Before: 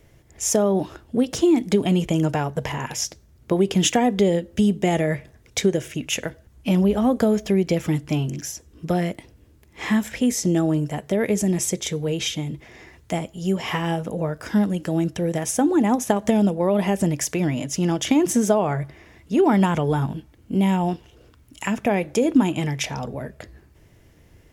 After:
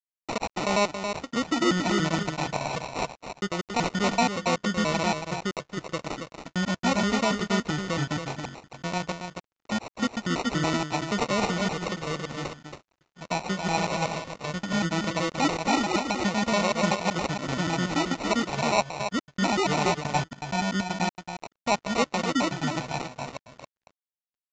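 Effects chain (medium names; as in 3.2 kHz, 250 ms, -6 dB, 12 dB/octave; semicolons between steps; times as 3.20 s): slices played last to first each 95 ms, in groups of 3; fifteen-band graphic EQ 400 Hz -9 dB, 1 kHz +4 dB, 2.5 kHz -10 dB; peak limiter -17 dBFS, peak gain reduction 9.5 dB; sample-and-hold 27×; bass shelf 270 Hz -10.5 dB; on a send: delay 276 ms -4.5 dB; on the sum: crossover distortion -48.5 dBFS; resampled via 16 kHz; upward expansion 1.5:1, over -53 dBFS; trim +5 dB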